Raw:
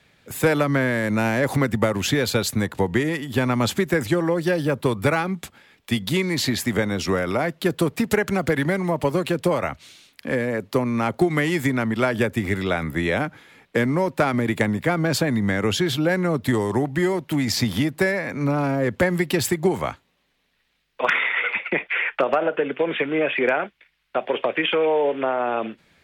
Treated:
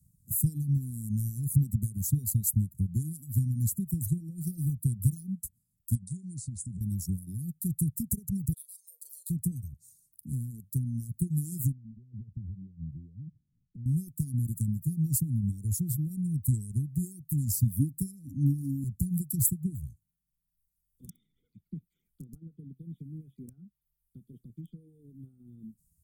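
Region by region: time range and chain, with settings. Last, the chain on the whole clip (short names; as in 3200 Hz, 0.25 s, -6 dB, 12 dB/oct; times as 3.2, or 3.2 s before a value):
5.95–6.81 compressor 5:1, threshold -27 dBFS + brick-wall FIR low-pass 10000 Hz
8.53–9.3 Chebyshev high-pass 470 Hz, order 8 + band shelf 3500 Hz +9 dB 1.2 oct + flutter echo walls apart 6.8 m, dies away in 0.3 s
11.72–13.86 LPF 1000 Hz + compressor, threshold -30 dBFS
17.79–18.84 bell 280 Hz +13.5 dB 0.35 oct + notch 4100 Hz
whole clip: inverse Chebyshev band-stop 580–2800 Hz, stop band 70 dB; reverb removal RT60 1.2 s; high shelf 5400 Hz +4 dB; gain +2.5 dB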